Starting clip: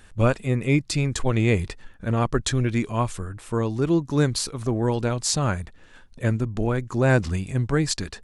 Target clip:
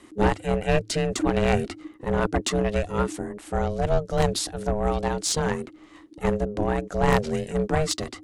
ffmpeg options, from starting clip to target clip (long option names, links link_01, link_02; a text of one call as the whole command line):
ffmpeg -i in.wav -af "aeval=exprs='val(0)*sin(2*PI*420*n/s)':channel_layout=same,aeval=exprs='0.473*(cos(1*acos(clip(val(0)/0.473,-1,1)))-cos(1*PI/2))+0.0266*(cos(5*acos(clip(val(0)/0.473,-1,1)))-cos(5*PI/2))+0.119*(cos(6*acos(clip(val(0)/0.473,-1,1)))-cos(6*PI/2))+0.075*(cos(8*acos(clip(val(0)/0.473,-1,1)))-cos(8*PI/2))':channel_layout=same,afreqshift=-110" out.wav